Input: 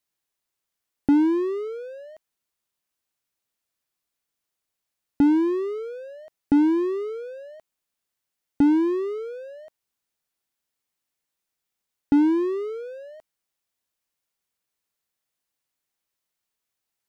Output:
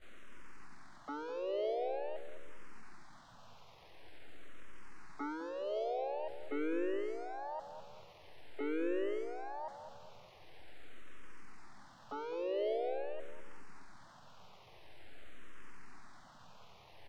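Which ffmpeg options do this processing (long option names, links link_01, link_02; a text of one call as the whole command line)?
ffmpeg -i in.wav -filter_complex "[0:a]aeval=exprs='val(0)+0.5*0.0299*sgn(val(0))':channel_layout=same,highpass=frequency=480:width=0.5412,highpass=frequency=480:width=1.3066,highshelf=frequency=3000:gain=6,agate=range=-33dB:threshold=-30dB:ratio=16:detection=peak,alimiter=level_in=19.5dB:limit=-24dB:level=0:latency=1:release=64,volume=-19.5dB,aeval=exprs='0.00668*(cos(1*acos(clip(val(0)/0.00668,-1,1)))-cos(1*PI/2))+0.000106*(cos(2*acos(clip(val(0)/0.00668,-1,1)))-cos(2*PI/2))+0.000944*(cos(5*acos(clip(val(0)/0.00668,-1,1)))-cos(5*PI/2))+0.000133*(cos(7*acos(clip(val(0)/0.00668,-1,1)))-cos(7*PI/2))+0.000596*(cos(8*acos(clip(val(0)/0.00668,-1,1)))-cos(8*PI/2))':channel_layout=same,adynamicsmooth=sensitivity=7:basefreq=870,asplit=3[link_01][link_02][link_03];[link_02]asetrate=58866,aresample=44100,atempo=0.749154,volume=-10dB[link_04];[link_03]asetrate=66075,aresample=44100,atempo=0.66742,volume=-2dB[link_05];[link_01][link_04][link_05]amix=inputs=3:normalize=0,asplit=2[link_06][link_07];[link_07]adelay=205,lowpass=frequency=930:poles=1,volume=-8dB,asplit=2[link_08][link_09];[link_09]adelay=205,lowpass=frequency=930:poles=1,volume=0.5,asplit=2[link_10][link_11];[link_11]adelay=205,lowpass=frequency=930:poles=1,volume=0.5,asplit=2[link_12][link_13];[link_13]adelay=205,lowpass=frequency=930:poles=1,volume=0.5,asplit=2[link_14][link_15];[link_15]adelay=205,lowpass=frequency=930:poles=1,volume=0.5,asplit=2[link_16][link_17];[link_17]adelay=205,lowpass=frequency=930:poles=1,volume=0.5[link_18];[link_06][link_08][link_10][link_12][link_14][link_16][link_18]amix=inputs=7:normalize=0,asplit=2[link_19][link_20];[link_20]afreqshift=-0.46[link_21];[link_19][link_21]amix=inputs=2:normalize=1,volume=12dB" out.wav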